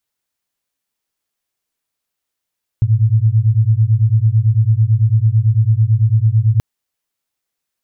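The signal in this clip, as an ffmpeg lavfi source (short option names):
-f lavfi -i "aevalsrc='0.237*(sin(2*PI*106*t)+sin(2*PI*115*t))':d=3.78:s=44100"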